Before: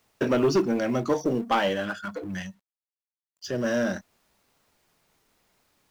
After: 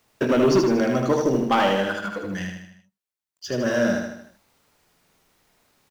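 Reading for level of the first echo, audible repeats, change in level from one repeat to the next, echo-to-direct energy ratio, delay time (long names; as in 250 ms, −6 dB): −4.0 dB, 5, −6.0 dB, −2.5 dB, 77 ms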